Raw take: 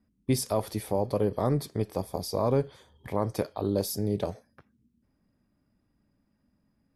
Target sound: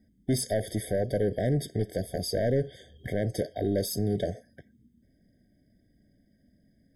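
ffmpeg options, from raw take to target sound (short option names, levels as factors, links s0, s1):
-filter_complex "[0:a]asplit=2[s0][s1];[s1]acompressor=threshold=0.0141:ratio=6,volume=0.708[s2];[s0][s2]amix=inputs=2:normalize=0,asoftclip=type=tanh:threshold=0.075,afftfilt=real='re*eq(mod(floor(b*sr/1024/760),2),0)':imag='im*eq(mod(floor(b*sr/1024/760),2),0)':win_size=1024:overlap=0.75,volume=1.33"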